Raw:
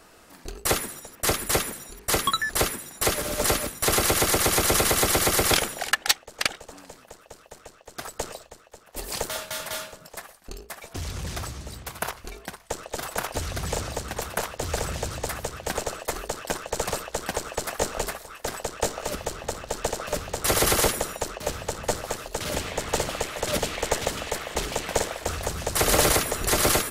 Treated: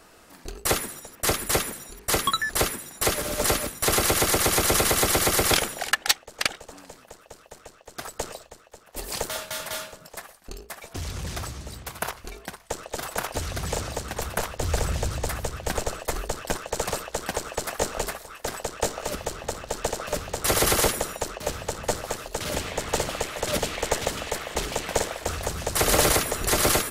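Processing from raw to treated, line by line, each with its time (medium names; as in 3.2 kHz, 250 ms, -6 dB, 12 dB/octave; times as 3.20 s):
14.20–16.56 s: bass shelf 120 Hz +8.5 dB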